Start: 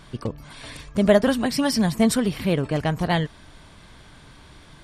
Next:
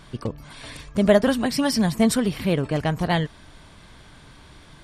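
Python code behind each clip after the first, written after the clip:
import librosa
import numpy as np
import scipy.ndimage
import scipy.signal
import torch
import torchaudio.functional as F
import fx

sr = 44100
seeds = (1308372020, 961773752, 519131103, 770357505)

y = x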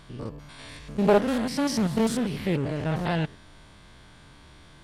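y = fx.spec_steps(x, sr, hold_ms=100)
y = fx.doppler_dist(y, sr, depth_ms=0.33)
y = y * 10.0 ** (-2.0 / 20.0)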